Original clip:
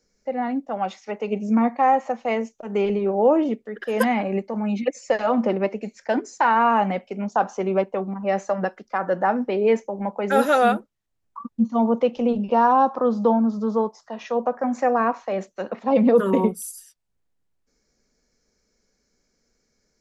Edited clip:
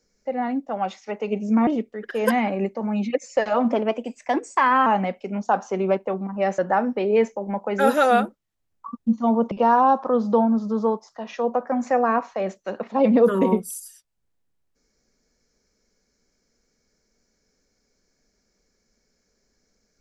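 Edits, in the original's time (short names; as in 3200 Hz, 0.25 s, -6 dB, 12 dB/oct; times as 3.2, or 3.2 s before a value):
1.67–3.4 cut
5.45–6.73 speed 112%
8.45–9.1 cut
12.03–12.43 cut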